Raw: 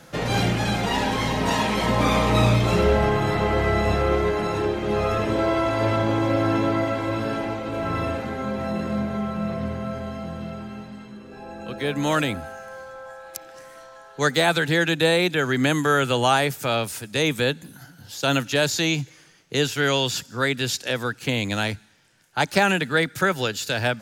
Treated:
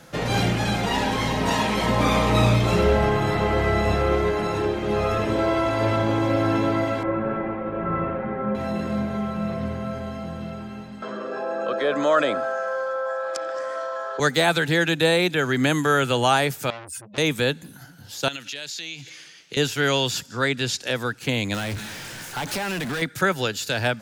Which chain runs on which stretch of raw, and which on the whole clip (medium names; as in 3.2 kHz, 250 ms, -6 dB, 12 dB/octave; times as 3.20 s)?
7.03–8.55 s: low-pass 2 kHz 24 dB/octave + comb 5.4 ms
11.02–14.20 s: cabinet simulation 420–6300 Hz, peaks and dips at 590 Hz +10 dB, 830 Hz -7 dB, 1.2 kHz +7 dB, 2.2 kHz -9 dB, 4 kHz -9 dB, 6 kHz -8 dB + band-stop 2.8 kHz, Q 6.2 + level flattener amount 50%
16.70–17.18 s: spectral contrast enhancement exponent 2.5 + peaking EQ 480 Hz -8 dB 2.1 oct + transformer saturation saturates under 3 kHz
18.28–19.57 s: frequency weighting D + compression, threshold -31 dBFS
20.30–20.82 s: low-pass 9.3 kHz + tape noise reduction on one side only encoder only
21.54–23.02 s: compression, threshold -32 dBFS + power-law waveshaper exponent 0.35
whole clip: none